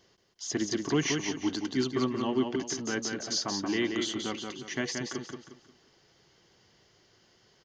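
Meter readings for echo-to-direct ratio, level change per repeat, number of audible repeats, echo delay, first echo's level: -4.5 dB, -9.5 dB, 4, 0.178 s, -5.0 dB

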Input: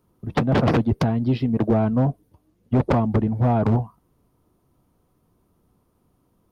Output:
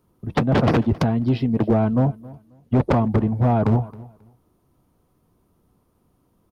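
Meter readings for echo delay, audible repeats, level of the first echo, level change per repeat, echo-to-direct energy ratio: 0.269 s, 2, -21.0 dB, -13.0 dB, -21.0 dB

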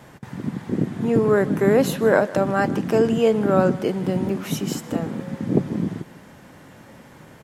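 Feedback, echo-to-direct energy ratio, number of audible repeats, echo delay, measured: 28%, -18.5 dB, 2, 0.156 s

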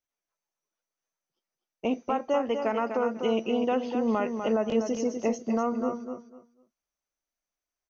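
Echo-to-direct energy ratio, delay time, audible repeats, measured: -7.0 dB, 0.248 s, 3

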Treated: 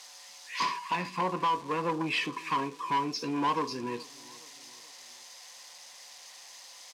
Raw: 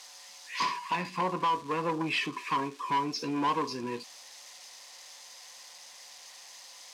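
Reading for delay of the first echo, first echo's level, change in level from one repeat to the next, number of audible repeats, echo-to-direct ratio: 0.421 s, -22.5 dB, -6.0 dB, 3, -21.5 dB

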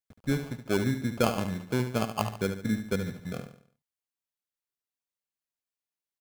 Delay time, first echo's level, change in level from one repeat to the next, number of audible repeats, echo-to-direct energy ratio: 72 ms, -9.0 dB, -7.5 dB, 4, -8.0 dB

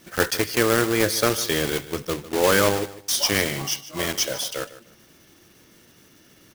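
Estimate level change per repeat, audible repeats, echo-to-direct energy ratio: -12.5 dB, 2, -16.0 dB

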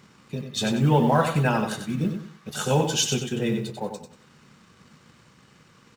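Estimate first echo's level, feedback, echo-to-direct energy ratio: -7.0 dB, 32%, -6.5 dB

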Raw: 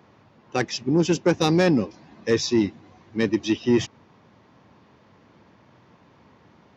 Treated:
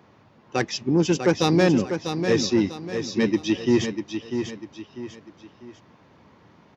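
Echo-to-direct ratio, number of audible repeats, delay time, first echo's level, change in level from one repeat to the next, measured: -7.0 dB, 3, 0.646 s, -7.5 dB, -8.5 dB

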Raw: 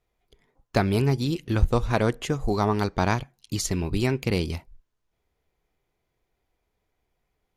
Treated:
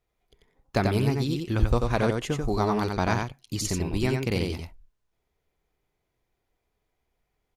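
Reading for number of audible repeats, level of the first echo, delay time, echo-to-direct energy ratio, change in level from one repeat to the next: 1, -4.0 dB, 90 ms, -4.0 dB, no steady repeat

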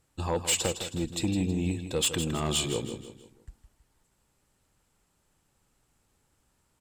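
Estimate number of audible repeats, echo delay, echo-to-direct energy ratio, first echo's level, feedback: 4, 0.16 s, -9.0 dB, -10.0 dB, 41%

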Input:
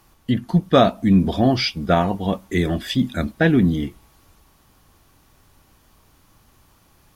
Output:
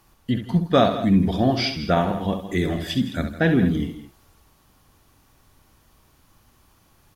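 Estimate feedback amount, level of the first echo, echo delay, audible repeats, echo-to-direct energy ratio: no steady repeat, -8.5 dB, 66 ms, 3, -7.0 dB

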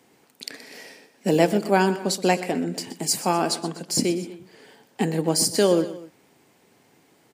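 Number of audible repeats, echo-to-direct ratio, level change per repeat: 2, -14.0 dB, -5.5 dB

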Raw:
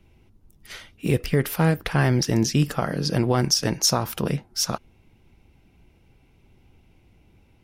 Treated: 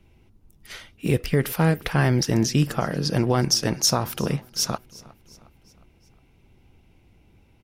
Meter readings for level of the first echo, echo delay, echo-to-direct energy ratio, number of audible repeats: -22.0 dB, 0.36 s, -20.5 dB, 3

